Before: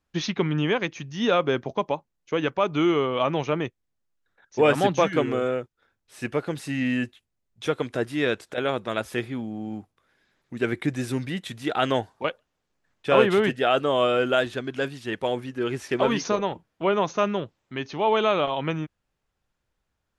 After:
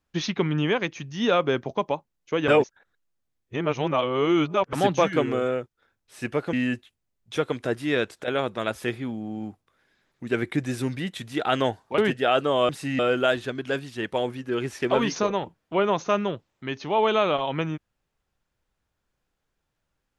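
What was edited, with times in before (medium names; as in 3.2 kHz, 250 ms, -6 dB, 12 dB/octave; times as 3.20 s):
2.48–4.73 s: reverse
6.53–6.83 s: move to 14.08 s
12.28–13.37 s: delete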